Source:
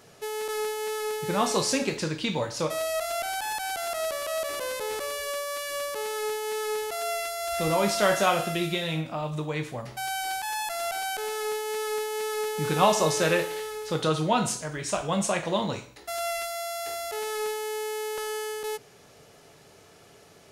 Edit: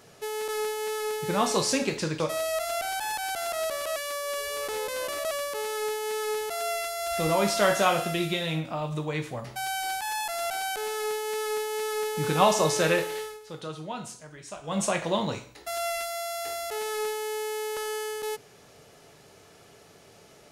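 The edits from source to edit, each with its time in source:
2.2–2.61 cut
4.37–5.72 reverse
13.62–15.23 dip -12 dB, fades 0.19 s

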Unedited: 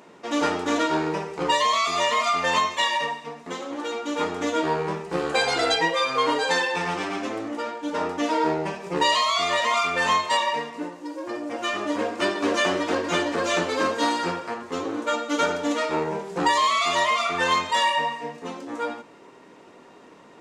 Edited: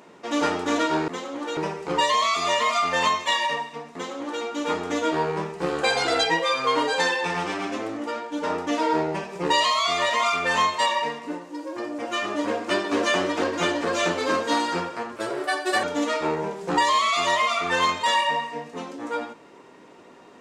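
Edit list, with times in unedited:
3.45–3.94 copy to 1.08
14.67–15.52 speed 126%

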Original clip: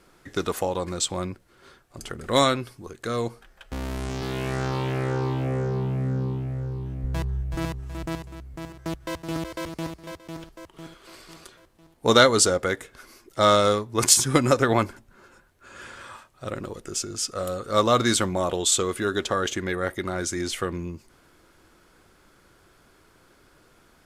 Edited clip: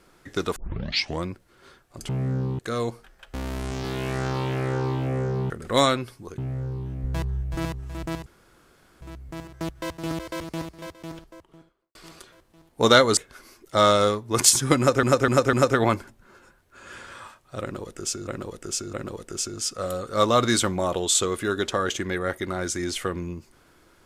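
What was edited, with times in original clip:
0.56 tape start 0.69 s
2.09–2.97 swap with 5.88–6.38
8.26 insert room tone 0.75 s
10.28–11.2 studio fade out
12.42–12.81 cut
14.42–14.67 loop, 4 plays
16.5–17.16 loop, 3 plays

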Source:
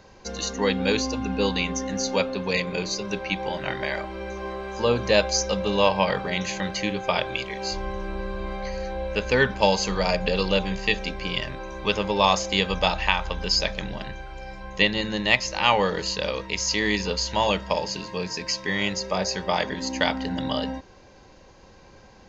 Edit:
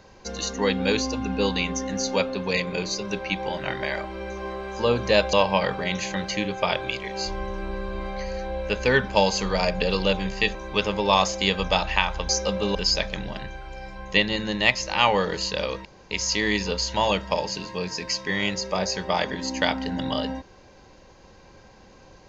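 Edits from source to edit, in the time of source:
5.33–5.79 move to 13.4
11.01–11.66 cut
16.5 insert room tone 0.26 s

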